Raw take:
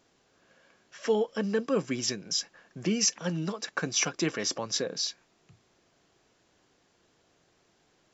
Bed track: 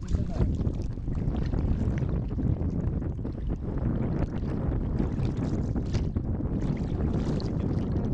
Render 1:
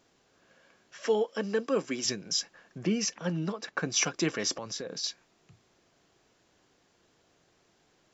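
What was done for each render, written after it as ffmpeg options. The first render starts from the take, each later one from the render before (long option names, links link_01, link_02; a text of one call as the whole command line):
ffmpeg -i in.wav -filter_complex "[0:a]asettb=1/sr,asplit=3[link_01][link_02][link_03];[link_01]atrim=end=1.064[link_04];[link_02]atrim=start=1.06:end=2.05,asetpts=PTS-STARTPTS,afade=type=in:duration=0.004:curve=qsin,afade=type=out:start_time=0.986:duration=0.004:curve=qsin,highpass=240[link_05];[link_03]atrim=start=2.046[link_06];[link_04][link_05]acrossfade=duration=0.004:curve1=hsin:curve2=qsin[link_07];[link_07][link_06]acrossfade=duration=0.004:curve1=qsin:curve2=hsin,asettb=1/sr,asplit=3[link_08][link_09][link_10];[link_08]atrim=end=2.784[link_11];[link_09]atrim=start=2.78:end=3.9,asetpts=PTS-STARTPTS,afade=type=in:duration=0.004:curve=qsin,afade=type=out:start_time=1.116:duration=0.004:curve=qsin,lowpass=frequency=3000:poles=1[link_12];[link_10]atrim=start=3.896[link_13];[link_11][link_12]acrossfade=duration=0.004:curve1=hsin:curve2=qsin[link_14];[link_14][link_13]acrossfade=duration=0.004:curve1=qsin:curve2=hsin,asettb=1/sr,asplit=3[link_15][link_16][link_17];[link_15]atrim=end=4.554[link_18];[link_16]atrim=start=4.55:end=5.04,asetpts=PTS-STARTPTS,afade=type=in:duration=0.004:curve=qsin,afade=type=out:start_time=0.486:duration=0.004:curve=qsin,acompressor=threshold=-33dB:ratio=5:attack=3.2:release=140:knee=1:detection=peak[link_19];[link_17]atrim=start=5.036[link_20];[link_18][link_19]acrossfade=duration=0.004:curve1=hsin:curve2=qsin[link_21];[link_21][link_20]acrossfade=duration=0.004:curve1=qsin:curve2=hsin" out.wav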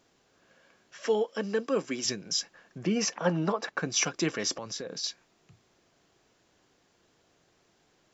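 ffmpeg -i in.wav -filter_complex "[0:a]asplit=3[link_01][link_02][link_03];[link_01]afade=type=out:start_time=2.95:duration=0.02[link_04];[link_02]equalizer=frequency=830:width=0.61:gain=11.5,afade=type=in:start_time=2.95:duration=0.02,afade=type=out:start_time=3.68:duration=0.02[link_05];[link_03]afade=type=in:start_time=3.68:duration=0.02[link_06];[link_04][link_05][link_06]amix=inputs=3:normalize=0" out.wav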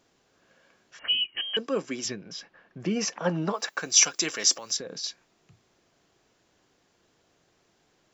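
ffmpeg -i in.wav -filter_complex "[0:a]asettb=1/sr,asplit=3[link_01][link_02][link_03];[link_01]atrim=end=0.994[link_04];[link_02]atrim=start=0.99:end=1.57,asetpts=PTS-STARTPTS,afade=type=in:duration=0.004:curve=qsin,afade=type=out:start_time=0.576:duration=0.004:curve=qsin,lowpass=frequency=2900:width_type=q:width=0.5098,lowpass=frequency=2900:width_type=q:width=0.6013,lowpass=frequency=2900:width_type=q:width=0.9,lowpass=frequency=2900:width_type=q:width=2.563,afreqshift=-3400[link_05];[link_03]atrim=start=1.566[link_06];[link_04][link_05]acrossfade=duration=0.004:curve1=hsin:curve2=qsin[link_07];[link_07][link_06]acrossfade=duration=0.004:curve1=qsin:curve2=hsin,asettb=1/sr,asplit=3[link_08][link_09][link_10];[link_08]atrim=end=2.084[link_11];[link_09]atrim=start=2.08:end=2.8,asetpts=PTS-STARTPTS,afade=type=in:duration=0.004:curve=qsin,afade=type=out:start_time=0.716:duration=0.004:curve=qsin,lowpass=3000[link_12];[link_10]atrim=start=2.796[link_13];[link_11][link_12]acrossfade=duration=0.004:curve1=hsin:curve2=qsin[link_14];[link_14][link_13]acrossfade=duration=0.004:curve1=qsin:curve2=hsin,asplit=3[link_15][link_16][link_17];[link_15]afade=type=out:start_time=3.52:duration=0.02[link_18];[link_16]aemphasis=mode=production:type=riaa,afade=type=in:start_time=3.52:duration=0.02,afade=type=out:start_time=4.76:duration=0.02[link_19];[link_17]afade=type=in:start_time=4.76:duration=0.02[link_20];[link_18][link_19][link_20]amix=inputs=3:normalize=0" out.wav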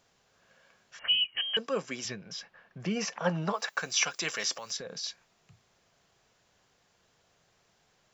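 ffmpeg -i in.wav -filter_complex "[0:a]acrossover=split=3900[link_01][link_02];[link_02]acompressor=threshold=-36dB:ratio=4:attack=1:release=60[link_03];[link_01][link_03]amix=inputs=2:normalize=0,equalizer=frequency=310:width=1.9:gain=-11" out.wav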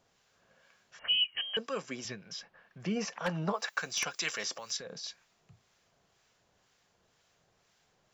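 ffmpeg -i in.wav -filter_complex "[0:a]aeval=exprs='0.133*(abs(mod(val(0)/0.133+3,4)-2)-1)':channel_layout=same,acrossover=split=1100[link_01][link_02];[link_01]aeval=exprs='val(0)*(1-0.5/2+0.5/2*cos(2*PI*2*n/s))':channel_layout=same[link_03];[link_02]aeval=exprs='val(0)*(1-0.5/2-0.5/2*cos(2*PI*2*n/s))':channel_layout=same[link_04];[link_03][link_04]amix=inputs=2:normalize=0" out.wav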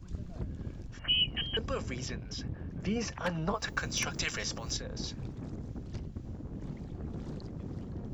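ffmpeg -i in.wav -i bed.wav -filter_complex "[1:a]volume=-12.5dB[link_01];[0:a][link_01]amix=inputs=2:normalize=0" out.wav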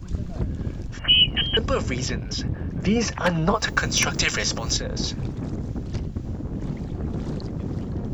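ffmpeg -i in.wav -af "volume=11.5dB" out.wav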